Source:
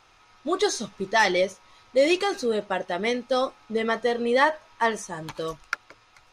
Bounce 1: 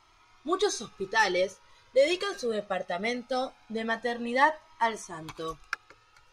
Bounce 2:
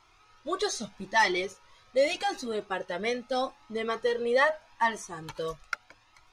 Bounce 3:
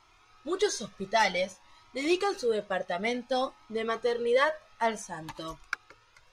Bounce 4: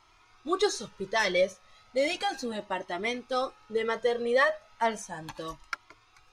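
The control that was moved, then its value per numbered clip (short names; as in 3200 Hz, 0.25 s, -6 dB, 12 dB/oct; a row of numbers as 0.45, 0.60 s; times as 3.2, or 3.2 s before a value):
cascading flanger, rate: 0.21, 0.81, 0.55, 0.35 Hz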